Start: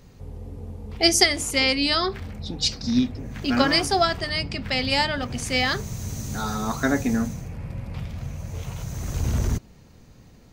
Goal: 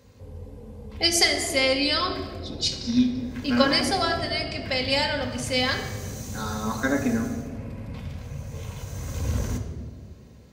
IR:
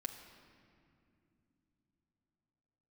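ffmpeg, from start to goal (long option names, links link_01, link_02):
-filter_complex "[0:a]highpass=frequency=62:width=0.5412,highpass=frequency=62:width=1.3066[link_01];[1:a]atrim=start_sample=2205,asetrate=88200,aresample=44100[link_02];[link_01][link_02]afir=irnorm=-1:irlink=0,volume=6.5dB"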